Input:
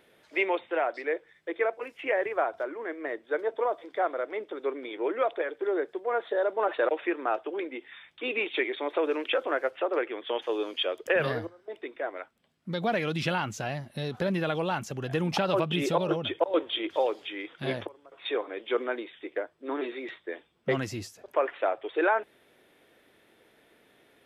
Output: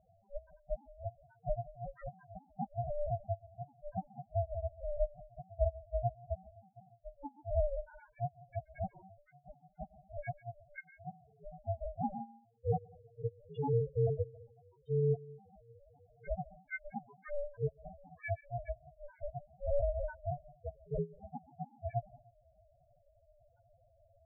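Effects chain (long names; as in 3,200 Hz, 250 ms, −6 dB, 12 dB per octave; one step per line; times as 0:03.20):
partials spread apart or drawn together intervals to 78%
gate with flip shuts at −23 dBFS, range −35 dB
low-shelf EQ 470 Hz +11 dB
comb and all-pass reverb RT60 0.53 s, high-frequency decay 0.45×, pre-delay 90 ms, DRR 18.5 dB
spectral peaks only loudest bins 1
ring modulation 290 Hz
level +6 dB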